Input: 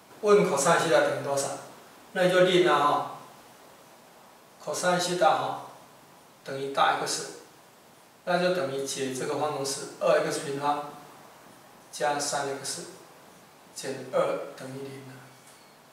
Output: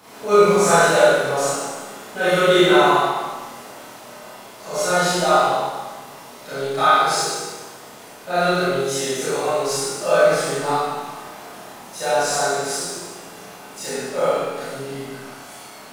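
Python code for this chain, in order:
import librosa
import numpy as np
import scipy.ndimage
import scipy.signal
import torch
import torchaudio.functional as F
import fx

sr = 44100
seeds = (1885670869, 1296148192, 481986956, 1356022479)

y = fx.law_mismatch(x, sr, coded='mu')
y = fx.room_flutter(y, sr, wall_m=5.1, rt60_s=0.24)
y = fx.rev_schroeder(y, sr, rt60_s=1.2, comb_ms=25, drr_db=-9.5)
y = y * 10.0 ** (-3.5 / 20.0)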